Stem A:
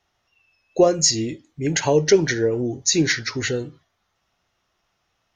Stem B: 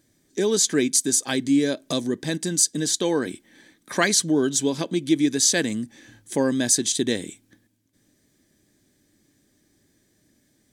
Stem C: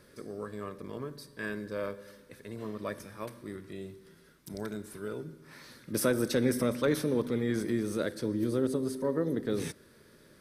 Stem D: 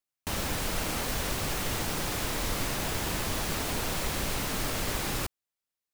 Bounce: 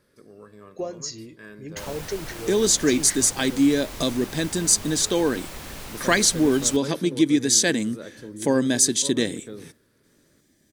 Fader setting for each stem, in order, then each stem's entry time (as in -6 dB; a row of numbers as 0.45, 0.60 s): -15.5, +1.0, -7.0, -6.5 dB; 0.00, 2.10, 0.00, 1.50 s